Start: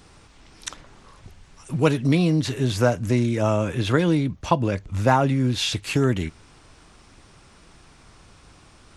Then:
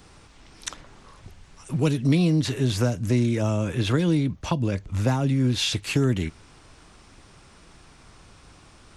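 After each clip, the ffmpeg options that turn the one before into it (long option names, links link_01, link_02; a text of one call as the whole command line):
ffmpeg -i in.wav -filter_complex "[0:a]acrossover=split=340|3000[link_01][link_02][link_03];[link_02]acompressor=threshold=-29dB:ratio=6[link_04];[link_01][link_04][link_03]amix=inputs=3:normalize=0" out.wav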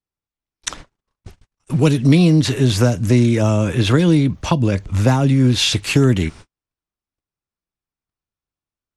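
ffmpeg -i in.wav -af "agate=range=-50dB:threshold=-42dB:ratio=16:detection=peak,volume=8dB" out.wav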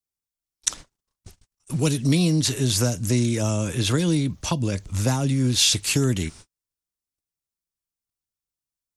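ffmpeg -i in.wav -af "bass=frequency=250:gain=1,treble=frequency=4000:gain=14,volume=-8.5dB" out.wav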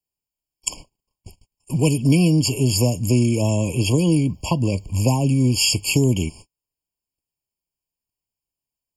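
ffmpeg -i in.wav -af "afftfilt=real='re*eq(mod(floor(b*sr/1024/1100),2),0)':imag='im*eq(mod(floor(b*sr/1024/1100),2),0)':win_size=1024:overlap=0.75,volume=4dB" out.wav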